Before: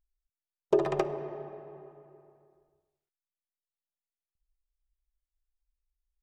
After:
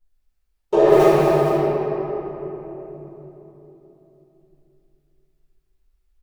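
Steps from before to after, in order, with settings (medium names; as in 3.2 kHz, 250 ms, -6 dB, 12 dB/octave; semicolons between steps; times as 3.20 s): delay 456 ms -11.5 dB; 0.88–1.49 s: short-mantissa float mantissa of 2-bit; reverberation RT60 3.6 s, pre-delay 5 ms, DRR -16.5 dB; trim -4 dB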